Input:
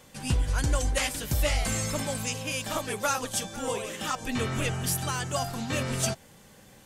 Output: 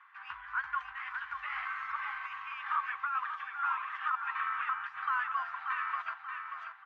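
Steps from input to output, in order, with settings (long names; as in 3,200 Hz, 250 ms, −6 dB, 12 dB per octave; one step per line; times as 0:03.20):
in parallel at −5 dB: gain into a clipping stage and back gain 26 dB
on the sum: elliptic high-pass filter 1,100 Hz, stop band 50 dB
repeating echo 584 ms, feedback 43%, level −7 dB
compressor whose output falls as the input rises −30 dBFS, ratio −1
low-pass filter 1,600 Hz 24 dB per octave
level +3 dB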